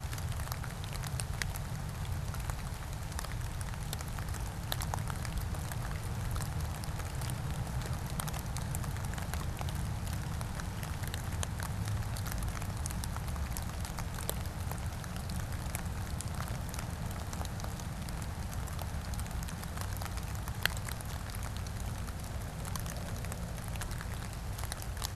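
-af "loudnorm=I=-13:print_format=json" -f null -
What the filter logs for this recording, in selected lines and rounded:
"input_i" : "-38.7",
"input_tp" : "-8.9",
"input_lra" : "1.9",
"input_thresh" : "-48.7",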